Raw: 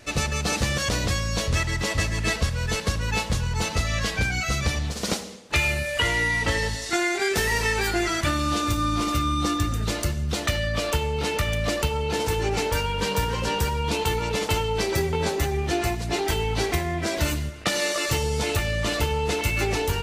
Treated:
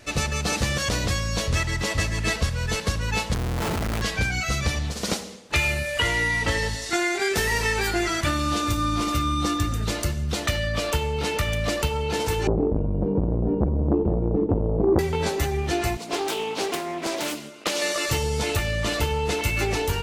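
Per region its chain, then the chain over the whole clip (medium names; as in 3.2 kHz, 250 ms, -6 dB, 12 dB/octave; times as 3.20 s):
3.34–4.02 s: low-pass 1.8 kHz 6 dB/octave + Schmitt trigger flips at -32.5 dBFS
12.47–14.99 s: resonant low-pass 340 Hz, resonance Q 3.8 + bass shelf 220 Hz +9.5 dB + transformer saturation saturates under 430 Hz
15.97–17.82 s: high-pass 220 Hz 24 dB/octave + peaking EQ 1.8 kHz -10.5 dB 0.29 oct + loudspeaker Doppler distortion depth 0.36 ms
whole clip: none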